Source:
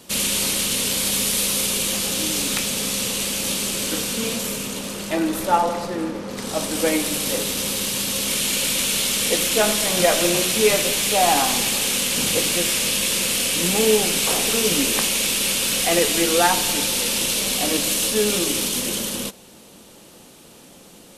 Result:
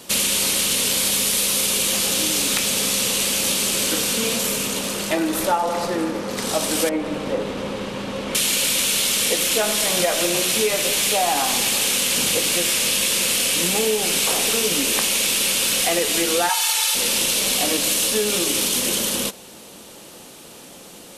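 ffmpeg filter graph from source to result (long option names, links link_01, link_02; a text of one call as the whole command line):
ffmpeg -i in.wav -filter_complex "[0:a]asettb=1/sr,asplit=3[link_01][link_02][link_03];[link_01]atrim=end=6.894[link_04];[link_02]atrim=start=6.89:end=8.35,asetpts=PTS-STARTPTS,afade=type=in:duration=0.004:curve=qsin,afade=type=out:start_time=1.456:duration=0.004:curve=qsin,lowpass=1200,aemphasis=mode=production:type=50kf[link_05];[link_03]atrim=start=8.346[link_06];[link_04][link_05]acrossfade=duration=0.004:curve1=hsin:curve2=qsin[link_07];[link_07][link_06]acrossfade=duration=0.004:curve1=qsin:curve2=hsin,asettb=1/sr,asplit=3[link_08][link_09][link_10];[link_08]atrim=end=16.494[link_11];[link_09]atrim=start=16.49:end=16.95,asetpts=PTS-STARTPTS,afade=type=in:duration=0.004:curve=qsin,afade=type=out:start_time=0.456:duration=0.004:curve=qsin,highpass=frequency=780:width=0.5412,highpass=frequency=780:width=1.3066,aecho=1:1:2.3:0.85,atrim=end_sample=20286[link_12];[link_10]atrim=start=16.946[link_13];[link_11][link_12]acrossfade=duration=0.004:curve1=hsin:curve2=qsin[link_14];[link_14][link_13]acrossfade=duration=0.004:curve1=qsin:curve2=hsin,lowshelf=frequency=110:gain=-7,acompressor=threshold=-22dB:ratio=6,equalizer=frequency=210:width_type=o:width=1.4:gain=-2.5,volume=5.5dB" out.wav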